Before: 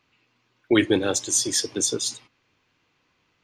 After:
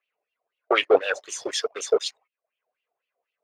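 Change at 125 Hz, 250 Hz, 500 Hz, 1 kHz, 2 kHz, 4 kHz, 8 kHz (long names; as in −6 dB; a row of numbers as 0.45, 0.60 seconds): below −20 dB, −13.0 dB, +4.0 dB, +8.0 dB, +2.5 dB, −2.0 dB, −12.0 dB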